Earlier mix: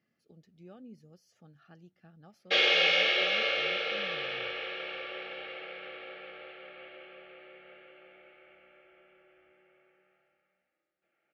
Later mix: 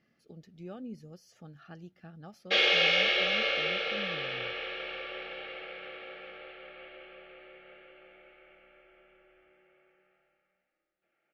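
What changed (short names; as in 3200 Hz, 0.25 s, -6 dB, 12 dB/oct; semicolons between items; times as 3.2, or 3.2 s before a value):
speech +7.5 dB; master: remove HPF 58 Hz 24 dB/oct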